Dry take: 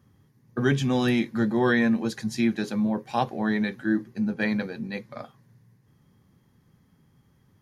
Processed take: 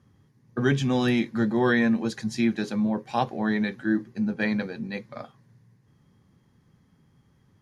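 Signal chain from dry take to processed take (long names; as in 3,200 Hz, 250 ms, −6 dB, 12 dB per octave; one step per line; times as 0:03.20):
low-pass filter 9,400 Hz 12 dB per octave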